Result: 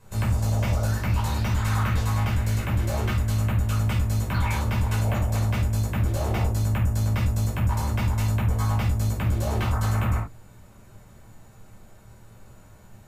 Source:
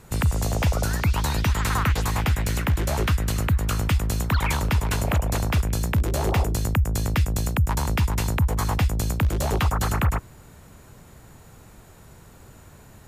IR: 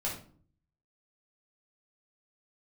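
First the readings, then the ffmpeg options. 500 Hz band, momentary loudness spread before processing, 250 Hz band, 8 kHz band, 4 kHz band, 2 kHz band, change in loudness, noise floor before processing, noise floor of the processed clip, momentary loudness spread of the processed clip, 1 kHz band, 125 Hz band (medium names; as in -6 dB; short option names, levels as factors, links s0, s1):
-3.5 dB, 1 LU, -2.0 dB, -6.0 dB, -5.5 dB, -4.0 dB, -1.0 dB, -49 dBFS, -50 dBFS, 1 LU, -3.0 dB, +1.0 dB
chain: -filter_complex "[1:a]atrim=start_sample=2205,atrim=end_sample=4410[s0];[0:a][s0]afir=irnorm=-1:irlink=0,volume=0.398"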